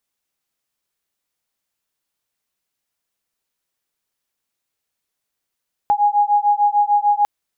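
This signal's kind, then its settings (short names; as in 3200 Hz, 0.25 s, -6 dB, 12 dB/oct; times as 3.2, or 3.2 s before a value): beating tones 822 Hz, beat 6.7 Hz, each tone -16 dBFS 1.35 s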